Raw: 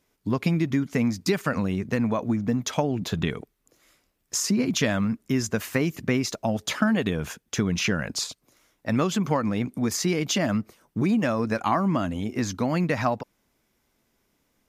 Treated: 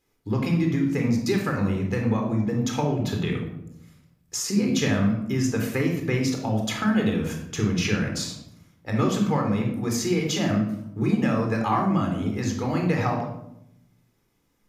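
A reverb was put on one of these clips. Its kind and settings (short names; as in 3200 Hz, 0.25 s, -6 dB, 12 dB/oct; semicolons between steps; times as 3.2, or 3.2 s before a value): shoebox room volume 2000 m³, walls furnished, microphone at 4 m; gain -4.5 dB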